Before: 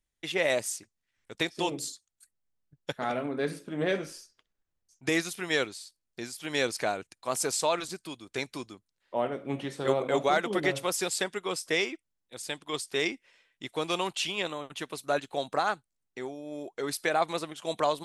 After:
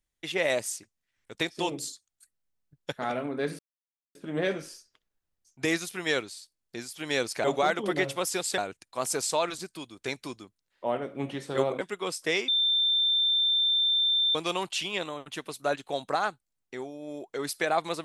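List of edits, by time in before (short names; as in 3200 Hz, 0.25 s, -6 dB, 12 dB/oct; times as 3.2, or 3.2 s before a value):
3.59 insert silence 0.56 s
10.11–11.25 move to 6.88
11.92–13.79 bleep 3570 Hz -21.5 dBFS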